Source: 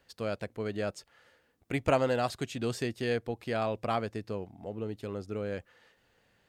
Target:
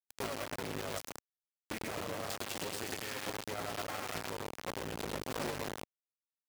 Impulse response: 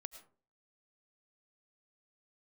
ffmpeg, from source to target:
-filter_complex "[0:a]asettb=1/sr,asplit=3[s0][s1][s2];[s0]atrim=end=2.344[s3];[s1]atrim=start=2.34:end=4.4,asetpts=PTS-STARTPTS,afade=t=in:d=0.004:c=qsin,afade=t=out:st=2.056:d=0.004:c=qsin,lowshelf=f=320:g=-10[s4];[s2]atrim=start=4.396[s5];[s3][s4]acrossfade=d=0.004:c1=hsin:c2=qsin[s6];[s6][s5]acrossfade=d=0.004:c1=qsin:c2=hsin,acompressor=threshold=0.0224:ratio=6,bandreject=f=60:t=h:w=6,bandreject=f=120:t=h:w=6,bandreject=f=180:t=h:w=6,bandreject=f=240:t=h:w=6,bandreject=f=300:t=h:w=6,bandreject=f=360:t=h:w=6,bandreject=f=420:t=h:w=6,bandreject=f=480:t=h:w=6,bandreject=f=540:t=h:w=6,bandreject=f=600:t=h:w=6[s7];[1:a]atrim=start_sample=2205,asetrate=22932,aresample=44100[s8];[s7][s8]afir=irnorm=-1:irlink=0,aeval=exprs='val(0)*sin(2*PI*50*n/s)':c=same,aphaser=in_gain=1:out_gain=1:delay=3.7:decay=0.45:speed=1.4:type=sinusoidal,aecho=1:1:100:0.596,acrusher=bits=4:dc=4:mix=0:aa=0.000001,alimiter=level_in=3.35:limit=0.0631:level=0:latency=1:release=50,volume=0.299,highpass=f=140:p=1,volume=2.51"

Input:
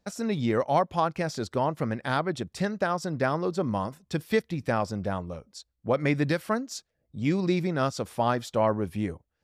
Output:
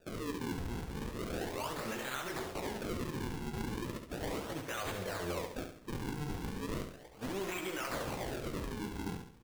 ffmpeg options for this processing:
-filter_complex "[0:a]aeval=exprs='val(0)+0.5*0.02*sgn(val(0))':c=same,lowshelf=f=280:t=q:w=1.5:g=-12,agate=range=0.112:threshold=0.0141:ratio=16:detection=peak,dynaudnorm=f=180:g=11:m=3.98,acrossover=split=100|1500[s0][s1][s2];[s1]alimiter=level_in=1.33:limit=0.0631:level=0:latency=1:release=47,volume=0.75[s3];[s0][s3][s2]amix=inputs=3:normalize=0,acompressor=threshold=0.0158:ratio=2,aeval=exprs='0.0335*(abs(mod(val(0)/0.0335+3,4)-2)-1)':c=same,flanger=delay=15.5:depth=7.5:speed=0.27,acrusher=samples=41:mix=1:aa=0.000001:lfo=1:lforange=65.6:lforate=0.36,asplit=2[s4][s5];[s5]aecho=0:1:69|138|207|276|345:0.447|0.188|0.0788|0.0331|0.0139[s6];[s4][s6]amix=inputs=2:normalize=0"

